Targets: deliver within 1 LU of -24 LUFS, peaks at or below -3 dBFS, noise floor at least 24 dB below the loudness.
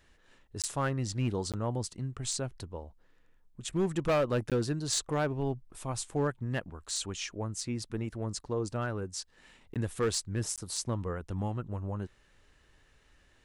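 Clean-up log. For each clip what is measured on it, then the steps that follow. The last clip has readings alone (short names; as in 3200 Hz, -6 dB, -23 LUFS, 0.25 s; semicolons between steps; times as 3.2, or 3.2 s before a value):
clipped 0.7%; flat tops at -22.5 dBFS; dropouts 5; longest dropout 17 ms; loudness -34.0 LUFS; peak -22.5 dBFS; loudness target -24.0 LUFS
-> clip repair -22.5 dBFS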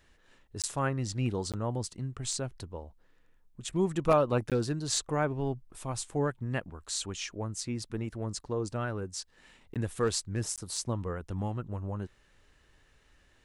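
clipped 0.0%; dropouts 5; longest dropout 17 ms
-> interpolate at 0.62/1.52/4.5/9.74/10.56, 17 ms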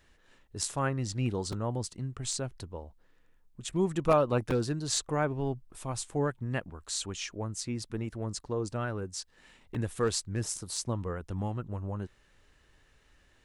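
dropouts 0; loudness -33.0 LUFS; peak -13.5 dBFS; loudness target -24.0 LUFS
-> gain +9 dB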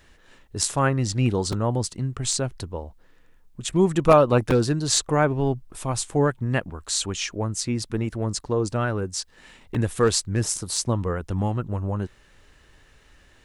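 loudness -24.0 LUFS; peak -4.5 dBFS; noise floor -56 dBFS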